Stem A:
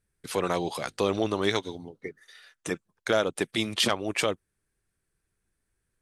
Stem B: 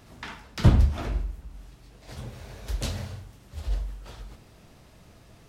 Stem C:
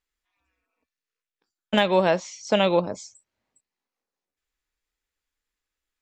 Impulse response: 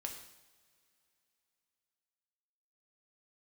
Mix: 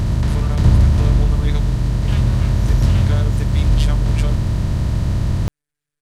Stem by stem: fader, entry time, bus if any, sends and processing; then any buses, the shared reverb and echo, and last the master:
-4.0 dB, 0.00 s, no send, robot voice 147 Hz
-5.0 dB, 0.00 s, no send, spectral levelling over time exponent 0.2; bass shelf 170 Hz +9.5 dB; small resonant body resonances 1/1.8 kHz, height 6 dB
+0.5 dB, 0.35 s, no send, compression 2.5:1, threshold -30 dBFS, peak gain reduction 10.5 dB; half-wave rectifier; high-pass 1.4 kHz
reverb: none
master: none

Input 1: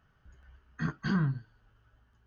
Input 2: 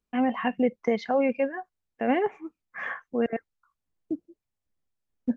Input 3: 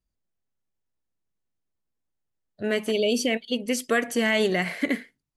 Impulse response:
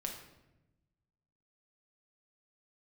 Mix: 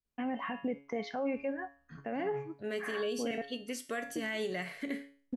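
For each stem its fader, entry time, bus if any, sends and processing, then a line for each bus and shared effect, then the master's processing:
-8.0 dB, 1.10 s, no send, auto duck -7 dB, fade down 0.85 s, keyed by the third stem
+3.0 dB, 0.05 s, no send, none
-4.0 dB, 0.00 s, no send, none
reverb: none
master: feedback comb 140 Hz, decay 0.44 s, harmonics all, mix 70%; peak limiter -26.5 dBFS, peak gain reduction 10 dB

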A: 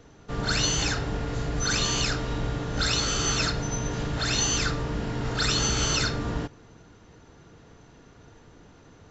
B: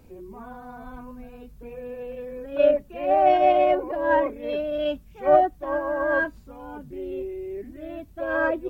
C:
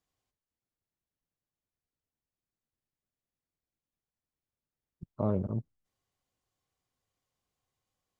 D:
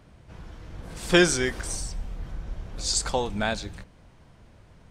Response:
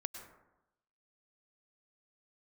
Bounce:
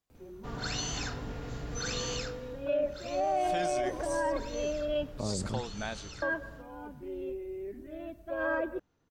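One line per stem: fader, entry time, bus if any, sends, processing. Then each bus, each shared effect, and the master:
2.14 s -10 dB -> 2.69 s -22.5 dB, 0.15 s, no send, none
-8.5 dB, 0.10 s, muted 5.34–6.22 s, send -7 dB, none
-2.0 dB, 0.00 s, no send, none
-10.5 dB, 2.40 s, no send, none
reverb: on, RT60 0.90 s, pre-delay 93 ms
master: peak limiter -22 dBFS, peak gain reduction 10 dB

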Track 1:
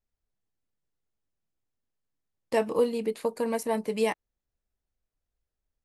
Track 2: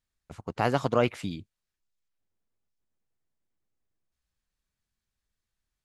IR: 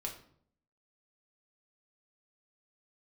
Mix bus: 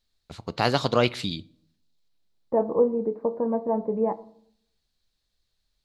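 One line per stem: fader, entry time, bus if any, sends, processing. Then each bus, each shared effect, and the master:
+0.5 dB, 0.00 s, send -5.5 dB, inverse Chebyshev low-pass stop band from 4.4 kHz, stop band 70 dB
+1.0 dB, 0.00 s, send -14 dB, peaking EQ 4.1 kHz +15 dB 0.71 oct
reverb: on, RT60 0.60 s, pre-delay 5 ms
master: none

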